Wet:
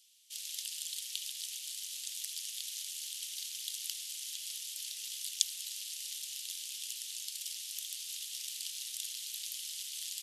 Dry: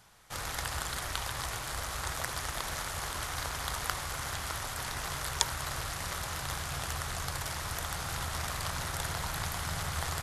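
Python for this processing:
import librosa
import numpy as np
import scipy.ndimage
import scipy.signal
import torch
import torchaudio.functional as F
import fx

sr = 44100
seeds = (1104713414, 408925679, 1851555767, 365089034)

y = scipy.signal.sosfilt(scipy.signal.ellip(4, 1.0, 80, 2900.0, 'highpass', fs=sr, output='sos'), x)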